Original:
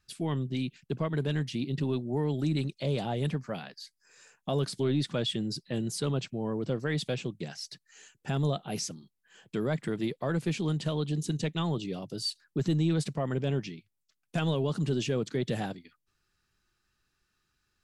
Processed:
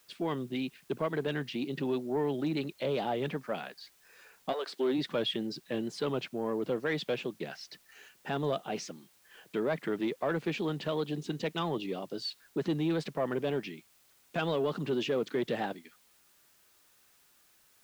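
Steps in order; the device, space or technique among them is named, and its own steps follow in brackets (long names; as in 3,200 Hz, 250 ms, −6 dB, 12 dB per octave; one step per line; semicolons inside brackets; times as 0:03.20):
tape answering machine (band-pass filter 300–3,100 Hz; soft clipping −24.5 dBFS, distortion −21 dB; tape wow and flutter; white noise bed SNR 31 dB)
0:04.52–0:04.97: high-pass filter 620 Hz → 150 Hz 24 dB per octave
level +3.5 dB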